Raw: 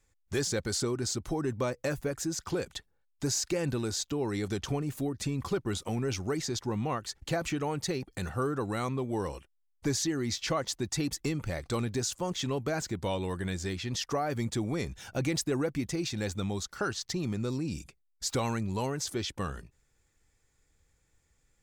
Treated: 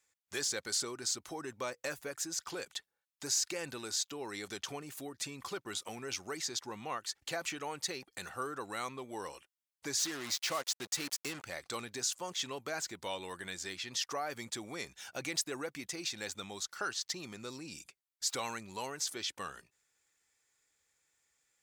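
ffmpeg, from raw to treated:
-filter_complex "[0:a]asettb=1/sr,asplit=3[a][b][c];[a]atrim=end=9.994[d];[b]atrim=start=9.99:end=11.44,asetpts=PTS-STARTPTS,afade=t=in:d=0.004:c=qsin,afade=t=out:st=1.446:d=0.004:c=qsin,acrusher=bits=5:mix=0:aa=0.5[e];[c]atrim=start=11.436[f];[d][e]acrossfade=d=0.004:c1=hsin:c2=qsin[g];[g][f]acrossfade=d=0.004:c1=qsin:c2=hsin,highpass=f=1.3k:p=1"

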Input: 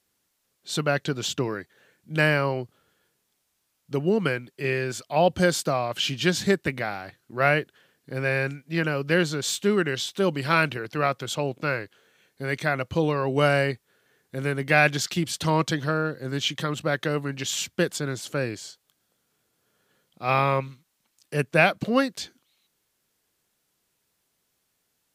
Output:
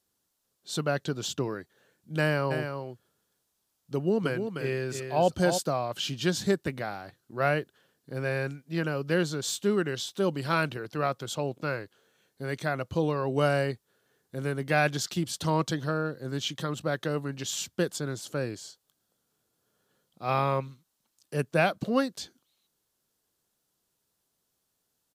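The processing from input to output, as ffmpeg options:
-filter_complex "[0:a]asplit=3[a][b][c];[a]afade=t=out:st=2.5:d=0.02[d];[b]aecho=1:1:304:0.447,afade=t=in:st=2.5:d=0.02,afade=t=out:st=5.57:d=0.02[e];[c]afade=t=in:st=5.57:d=0.02[f];[d][e][f]amix=inputs=3:normalize=0,equalizer=f=2.2k:w=1.7:g=-7.5,volume=-3.5dB"

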